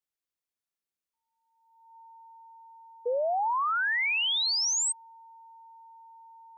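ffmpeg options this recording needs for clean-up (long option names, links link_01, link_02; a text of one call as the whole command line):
ffmpeg -i in.wav -af "bandreject=frequency=910:width=30" out.wav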